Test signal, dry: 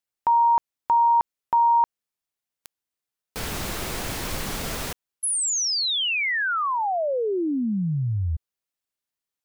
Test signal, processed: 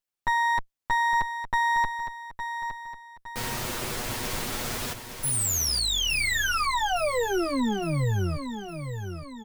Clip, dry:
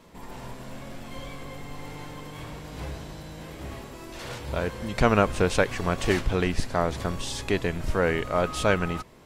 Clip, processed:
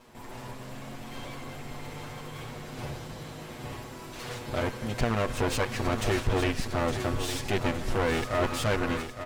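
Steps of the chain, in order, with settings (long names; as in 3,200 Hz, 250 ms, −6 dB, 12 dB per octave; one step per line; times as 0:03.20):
lower of the sound and its delayed copy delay 8.2 ms
brickwall limiter −16.5 dBFS
repeating echo 862 ms, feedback 45%, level −9 dB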